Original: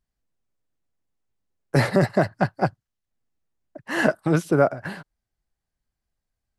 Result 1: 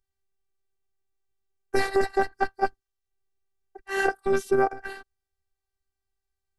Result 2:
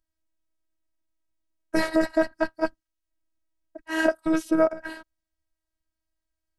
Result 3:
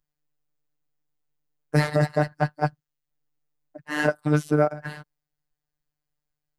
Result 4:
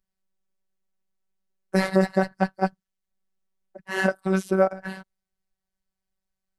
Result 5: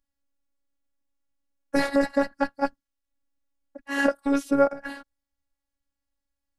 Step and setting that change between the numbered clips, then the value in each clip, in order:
robot voice, frequency: 390 Hz, 320 Hz, 150 Hz, 190 Hz, 280 Hz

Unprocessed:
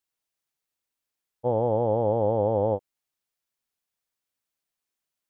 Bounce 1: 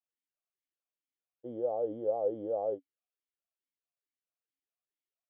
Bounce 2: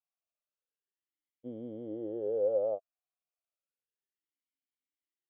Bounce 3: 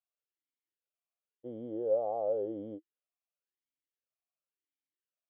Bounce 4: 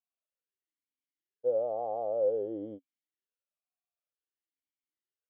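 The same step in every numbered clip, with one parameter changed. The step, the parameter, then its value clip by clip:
talking filter, rate: 2.3 Hz, 0.32 Hz, 0.94 Hz, 0.53 Hz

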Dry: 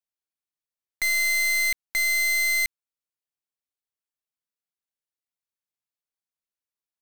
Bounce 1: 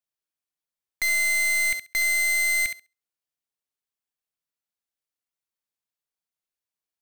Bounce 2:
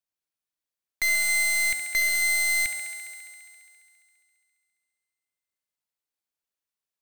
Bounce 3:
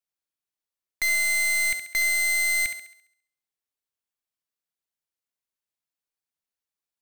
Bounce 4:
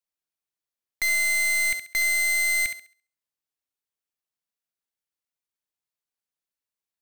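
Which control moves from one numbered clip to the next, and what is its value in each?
thinning echo, feedback: 15%, 83%, 47%, 30%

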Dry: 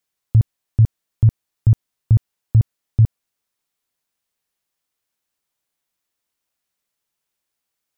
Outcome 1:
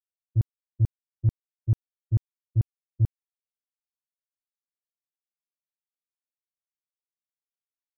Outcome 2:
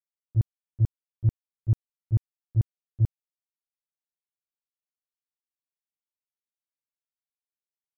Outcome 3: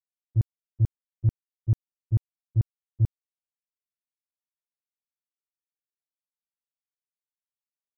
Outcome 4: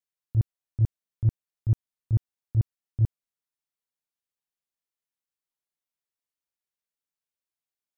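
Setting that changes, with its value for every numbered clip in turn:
gate, range: -57 dB, -28 dB, -41 dB, -15 dB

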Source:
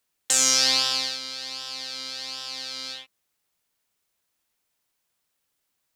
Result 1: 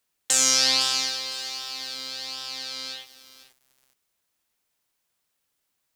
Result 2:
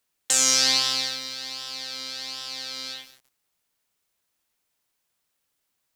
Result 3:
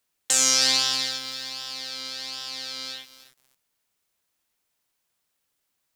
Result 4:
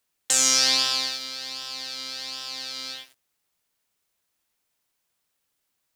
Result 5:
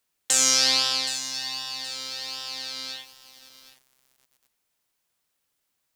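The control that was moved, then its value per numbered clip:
bit-crushed delay, time: 507 ms, 184 ms, 314 ms, 110 ms, 771 ms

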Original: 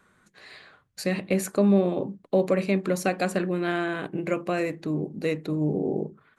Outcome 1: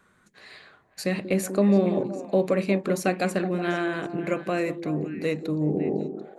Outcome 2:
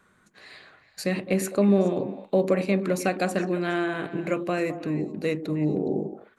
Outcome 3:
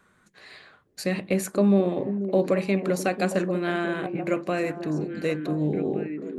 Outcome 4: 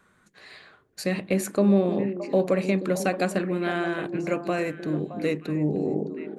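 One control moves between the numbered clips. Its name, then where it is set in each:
repeats whose band climbs or falls, time: 185 ms, 104 ms, 488 ms, 309 ms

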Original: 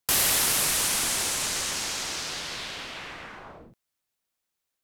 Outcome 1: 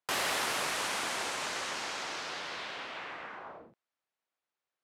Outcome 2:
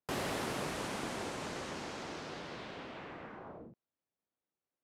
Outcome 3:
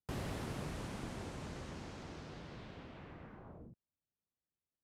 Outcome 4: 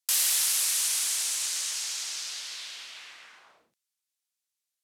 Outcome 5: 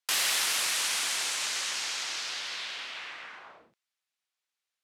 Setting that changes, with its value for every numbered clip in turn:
band-pass filter, frequency: 910 Hz, 290 Hz, 100 Hz, 7.5 kHz, 2.7 kHz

